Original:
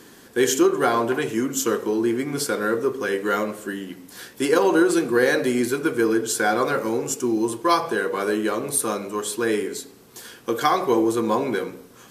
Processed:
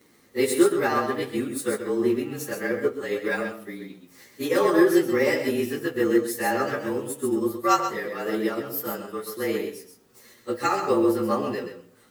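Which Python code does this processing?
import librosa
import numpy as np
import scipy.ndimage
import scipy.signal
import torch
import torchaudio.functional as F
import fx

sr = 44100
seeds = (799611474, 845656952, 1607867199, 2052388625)

y = fx.partial_stretch(x, sr, pct=109)
y = y + 10.0 ** (-6.5 / 20.0) * np.pad(y, (int(131 * sr / 1000.0), 0))[:len(y)]
y = fx.upward_expand(y, sr, threshold_db=-33.0, expansion=1.5)
y = y * 10.0 ** (2.0 / 20.0)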